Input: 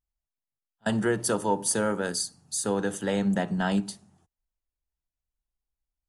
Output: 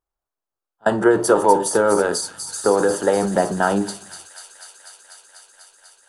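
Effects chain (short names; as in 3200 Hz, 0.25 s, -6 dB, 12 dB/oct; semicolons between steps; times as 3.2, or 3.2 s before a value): band shelf 680 Hz +13 dB 2.6 oct; transient shaper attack +4 dB, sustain +8 dB; flange 0.52 Hz, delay 9.7 ms, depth 2.3 ms, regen +78%; on a send: thin delay 0.246 s, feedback 84%, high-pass 3400 Hz, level -7 dB; on the sum: gain +2 dB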